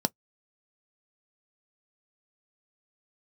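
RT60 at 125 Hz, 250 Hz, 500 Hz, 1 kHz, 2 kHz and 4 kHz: 0.10 s, 0.10 s, 0.10 s, 0.10 s, 0.10 s, 0.10 s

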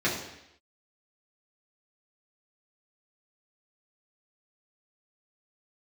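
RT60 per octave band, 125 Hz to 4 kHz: 0.75 s, 0.80 s, 0.80 s, 0.80 s, 0.90 s, 0.85 s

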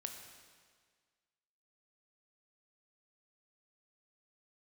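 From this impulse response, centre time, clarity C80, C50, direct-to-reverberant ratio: 42 ms, 6.5 dB, 5.5 dB, 4.0 dB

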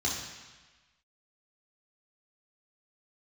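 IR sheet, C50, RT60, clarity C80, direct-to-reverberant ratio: 3.0 dB, 1.3 s, 5.0 dB, -4.5 dB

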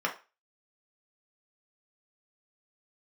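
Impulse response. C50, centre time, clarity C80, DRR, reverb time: 12.0 dB, 14 ms, 18.5 dB, -0.5 dB, 0.30 s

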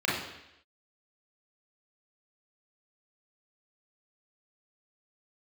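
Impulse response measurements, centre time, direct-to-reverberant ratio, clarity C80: 59 ms, -6.5 dB, 6.0 dB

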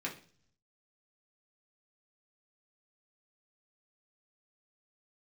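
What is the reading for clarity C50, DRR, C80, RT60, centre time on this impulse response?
11.0 dB, -3.0 dB, 16.0 dB, 0.45 s, 17 ms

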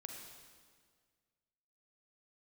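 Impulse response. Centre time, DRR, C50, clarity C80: 63 ms, 2.0 dB, 2.5 dB, 4.0 dB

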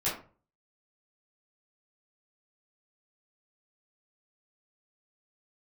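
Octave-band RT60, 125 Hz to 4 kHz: 0.60 s, 0.45 s, 0.40 s, 0.35 s, 0.30 s, 0.20 s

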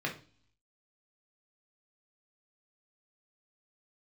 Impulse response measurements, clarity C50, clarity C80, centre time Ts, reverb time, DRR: 10.5 dB, 17.0 dB, 17 ms, no single decay rate, -1.5 dB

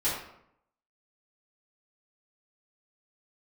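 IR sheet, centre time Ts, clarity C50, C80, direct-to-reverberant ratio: 50 ms, 2.0 dB, 5.5 dB, -11.5 dB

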